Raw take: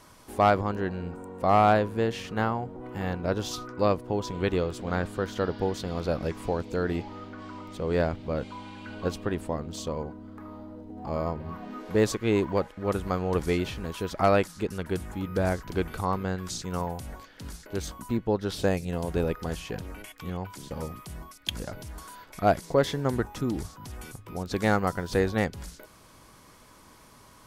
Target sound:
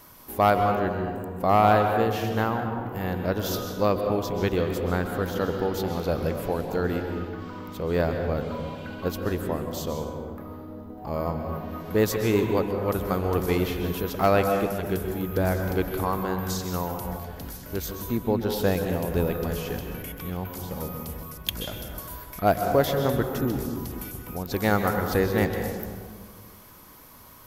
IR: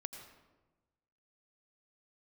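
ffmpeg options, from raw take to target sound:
-filter_complex "[0:a]aexciter=amount=10.7:drive=2.8:freq=12k[a];[1:a]atrim=start_sample=2205,asetrate=28665,aresample=44100[b];[a][b]afir=irnorm=-1:irlink=0,volume=2.5dB"

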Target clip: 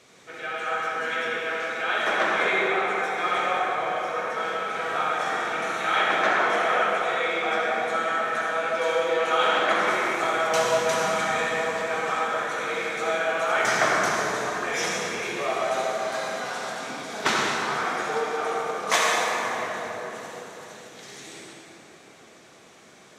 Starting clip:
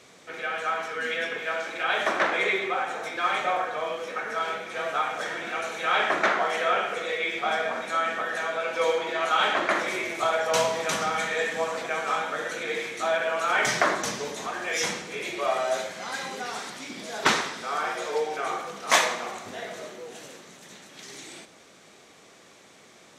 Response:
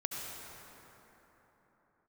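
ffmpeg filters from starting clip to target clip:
-filter_complex "[0:a]asettb=1/sr,asplit=3[a][b][c];[a]atrim=end=4.604[d];[b]atrim=start=4.6:end=6.02,asetpts=PTS-STARTPTS,afade=t=in:d=0.004:c=qsin,afade=t=out:st=1.416:d=0.004:c=qsin,asplit=2[e][f];[f]adelay=46,volume=-4dB[g];[e][g]amix=inputs=2:normalize=0,atrim=end_sample=62622[h];[c]atrim=start=6.016[i];[d][h]acrossfade=d=0.004:c1=hsin:c2=qsin[j];[j][i]acrossfade=d=0.004:c1=qsin:c2=hsin[k];[1:a]atrim=start_sample=2205,asetrate=48510,aresample=44100[l];[k][l]afir=irnorm=-1:irlink=0"

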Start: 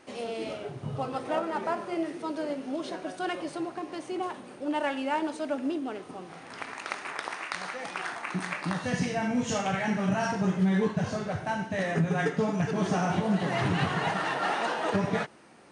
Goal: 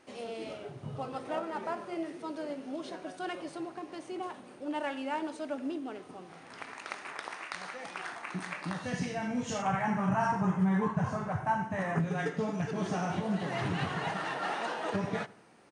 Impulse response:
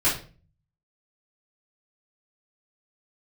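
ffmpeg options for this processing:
-filter_complex "[0:a]asettb=1/sr,asplit=3[a][b][c];[a]atrim=end=9.624[d];[b]atrim=start=9.62:end=12,asetpts=PTS-STARTPTS,afade=t=in:d=0.004:c=qsin,afade=t=out:st=2.376:d=0.004:c=qsin,equalizer=f=125:t=o:w=1:g=7,equalizer=f=500:t=o:w=1:g=-4,equalizer=f=1k:t=o:w=1:g=12,equalizer=f=4k:t=o:w=1:g=-10[e];[c]atrim=start=11.996[f];[d][e]acrossfade=d=0.004:c1=hsin:c2=qsin[g];[g][f]acrossfade=d=0.004:c1=qsin:c2=hsin,asplit=2[h][i];[i]adelay=83,lowpass=f=2k:p=1,volume=-20dB,asplit=2[j][k];[k]adelay=83,lowpass=f=2k:p=1,volume=0.53,asplit=2[l][m];[m]adelay=83,lowpass=f=2k:p=1,volume=0.53,asplit=2[n][o];[o]adelay=83,lowpass=f=2k:p=1,volume=0.53[p];[h][j][l][n][p]amix=inputs=5:normalize=0,volume=-5.5dB"

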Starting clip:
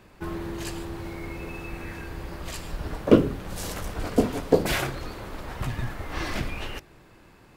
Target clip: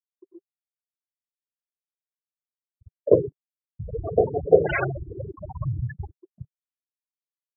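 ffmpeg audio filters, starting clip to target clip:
-filter_complex "[0:a]asettb=1/sr,asplit=3[a][b][c];[a]atrim=end=3.794[d];[b]atrim=start=3.79:end=6.11,asetpts=PTS-STARTPTS,afade=t=in:d=0.004:c=qsin,afade=t=out:st=2.316:d=0.004:c=qsin,aeval=exprs='val(0)+0.5*0.112*sgn(val(0))':c=same[e];[c]atrim=start=6.106[f];[d][e]acrossfade=d=0.004:c1=hsin:c2=qsin[g];[g][f]acrossfade=d=0.004:c1=qsin:c2=hsin,highpass=70,afftfilt=real='re*gte(hypot(re,im),0.251)':imag='im*gte(hypot(re,im),0.251)':win_size=1024:overlap=0.75,agate=range=-33dB:threshold=-44dB:ratio=3:detection=peak,firequalizer=gain_entry='entry(150,0);entry(240,-20);entry(390,5)':delay=0.05:min_phase=1,volume=-1.5dB"

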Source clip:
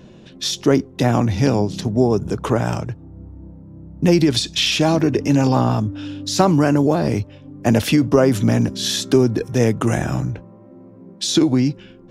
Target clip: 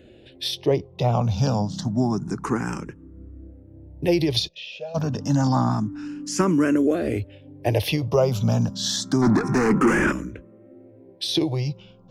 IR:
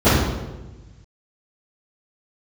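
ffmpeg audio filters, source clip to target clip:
-filter_complex "[0:a]asettb=1/sr,asplit=3[a][b][c];[a]atrim=end=0.574[d];[b]atrim=start=0.57:end=1.25,asetpts=PTS-STARTPTS,afade=t=in:d=0.004:c=qsin,afade=t=out:st=0.676:d=0.004:c=qsin,aemphasis=mode=reproduction:type=50kf[e];[c]atrim=start=1.246[f];[d][e]acrossfade=d=0.004:c1=hsin:c2=qsin[g];[g][f]acrossfade=d=0.004:c1=qsin:c2=hsin,asplit=3[h][i][j];[h]afade=t=out:st=4.47:d=0.02[k];[i]asplit=3[l][m][n];[l]bandpass=f=530:t=q:w=8,volume=0dB[o];[m]bandpass=f=1.84k:t=q:w=8,volume=-6dB[p];[n]bandpass=f=2.48k:t=q:w=8,volume=-9dB[q];[o][p][q]amix=inputs=3:normalize=0,afade=t=in:st=4.47:d=0.02,afade=t=out:st=4.94:d=0.02[r];[j]afade=t=in:st=4.94:d=0.02[s];[k][r][s]amix=inputs=3:normalize=0,asplit=3[t][u][v];[t]afade=t=out:st=9.21:d=0.02[w];[u]asplit=2[x][y];[y]highpass=f=720:p=1,volume=33dB,asoftclip=type=tanh:threshold=-4.5dB[z];[x][z]amix=inputs=2:normalize=0,lowpass=f=1k:p=1,volume=-6dB,afade=t=in:st=9.21:d=0.02,afade=t=out:st=10.11:d=0.02[aa];[v]afade=t=in:st=10.11:d=0.02[ab];[w][aa][ab]amix=inputs=3:normalize=0,asplit=2[ac][ad];[ad]afreqshift=0.28[ae];[ac][ae]amix=inputs=2:normalize=1,volume=-2dB"

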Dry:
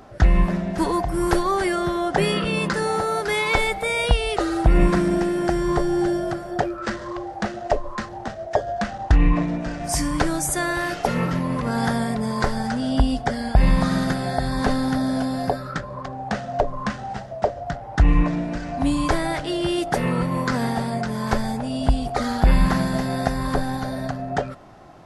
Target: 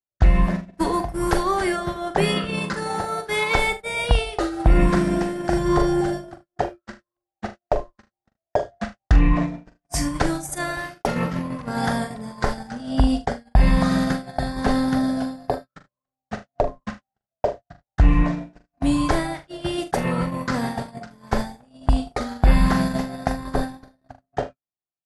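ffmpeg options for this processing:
-filter_complex "[0:a]agate=range=-59dB:threshold=-22dB:ratio=16:detection=peak,asettb=1/sr,asplit=3[a][b][c];[a]atrim=end=5.474[d];[b]atrim=start=5.47:end=6.01,asetpts=PTS-STARTPTS,afade=t=in:d=0.004:c=qsin,afade=t=out:st=0.536:d=0.004:c=qsin,asplit=2[e][f];[f]adelay=40,volume=-5dB[g];[e][g]amix=inputs=2:normalize=0,atrim=end_sample=23814[h];[c]atrim=start=6.006[i];[d][h]acrossfade=d=0.004:c1=hsin:c2=qsin[j];[j][i]acrossfade=d=0.004:c1=qsin:c2=hsin,aecho=1:1:42|76:0.335|0.126"

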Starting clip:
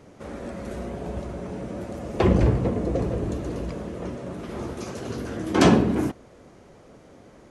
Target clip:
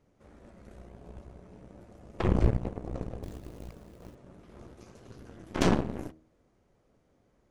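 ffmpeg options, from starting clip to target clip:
-filter_complex "[0:a]lowshelf=f=86:g=10.5,bandreject=f=79.15:t=h:w=4,bandreject=f=158.3:t=h:w=4,bandreject=f=237.45:t=h:w=4,bandreject=f=316.6:t=h:w=4,bandreject=f=395.75:t=h:w=4,bandreject=f=474.9:t=h:w=4,bandreject=f=554.05:t=h:w=4,bandreject=f=633.2:t=h:w=4,aeval=exprs='0.75*(cos(1*acos(clip(val(0)/0.75,-1,1)))-cos(1*PI/2))+0.0335*(cos(3*acos(clip(val(0)/0.75,-1,1)))-cos(3*PI/2))+0.15*(cos(4*acos(clip(val(0)/0.75,-1,1)))-cos(4*PI/2))+0.00473*(cos(5*acos(clip(val(0)/0.75,-1,1)))-cos(5*PI/2))+0.0668*(cos(7*acos(clip(val(0)/0.75,-1,1)))-cos(7*PI/2))':c=same,asettb=1/sr,asplit=3[a][b][c];[a]atrim=end=3.234[d];[b]atrim=start=3.23:end=4.15,asetpts=PTS-STARTPTS,afade=t=in:d=0.004:c=qsin,afade=t=out:st=0.916:d=0.004:c=qsin,acrusher=bits=4:mode=log:mix=0:aa=0.000001[e];[c]atrim=start=4.146[f];[d][e]acrossfade=d=0.004:c1=hsin:c2=qsin[g];[g][f]acrossfade=d=0.004:c1=qsin:c2=hsin,volume=-9dB"

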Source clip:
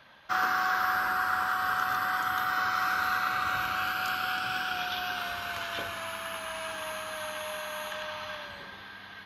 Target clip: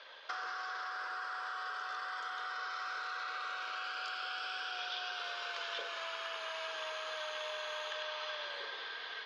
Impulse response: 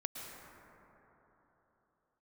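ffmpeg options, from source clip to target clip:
-af "alimiter=limit=-23.5dB:level=0:latency=1:release=12,acompressor=threshold=-40dB:ratio=6,highpass=f=430:w=0.5412,highpass=f=430:w=1.3066,equalizer=f=460:t=q:w=4:g=9,equalizer=f=790:t=q:w=4:g=-4,equalizer=f=3.4k:t=q:w=4:g=5,equalizer=f=4.9k:t=q:w=4:g=6,lowpass=f=6.4k:w=0.5412,lowpass=f=6.4k:w=1.3066,volume=1.5dB"

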